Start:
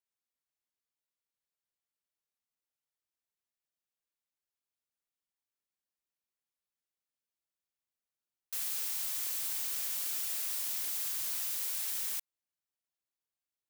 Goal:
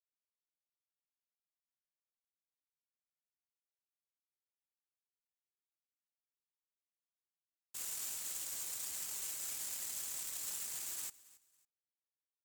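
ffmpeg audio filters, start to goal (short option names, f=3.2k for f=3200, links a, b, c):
-af "asetrate=35002,aresample=44100,atempo=1.25992,alimiter=level_in=9dB:limit=-24dB:level=0:latency=1:release=12,volume=-9dB,asetrate=48510,aresample=44100,afftfilt=real='hypot(re,im)*cos(2*PI*random(0))':imag='hypot(re,im)*sin(2*PI*random(1))':win_size=512:overlap=0.75,aeval=exprs='sgn(val(0))*max(abs(val(0))-0.00299,0)':c=same,equalizer=f=7.5k:t=o:w=0.51:g=10,aecho=1:1:276|552:0.0944|0.0264,volume=9.5dB"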